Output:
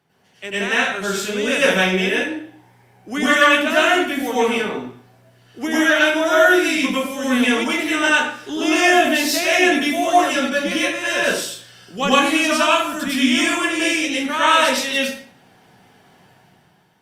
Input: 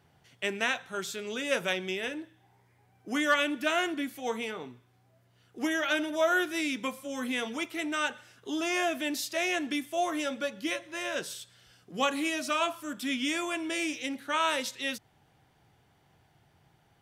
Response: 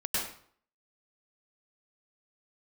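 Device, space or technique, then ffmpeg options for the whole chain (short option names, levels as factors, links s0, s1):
far-field microphone of a smart speaker: -filter_complex "[1:a]atrim=start_sample=2205[s0];[0:a][s0]afir=irnorm=-1:irlink=0,highpass=f=130:w=0.5412,highpass=f=130:w=1.3066,dynaudnorm=f=160:g=9:m=2.82" -ar 48000 -c:a libopus -b:a 48k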